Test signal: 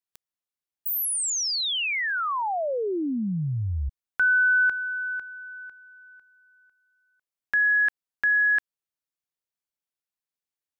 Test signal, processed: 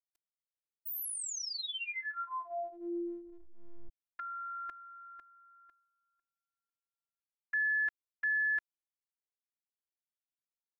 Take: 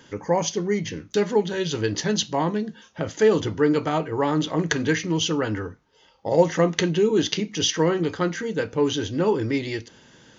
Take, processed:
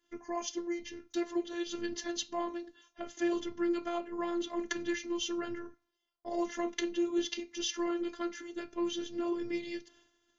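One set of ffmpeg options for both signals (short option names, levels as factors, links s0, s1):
-af "agate=range=0.141:threshold=0.00794:ratio=3:release=398:detection=peak,afftfilt=real='hypot(re,im)*cos(PI*b)':imag='0':win_size=512:overlap=0.75,volume=0.376"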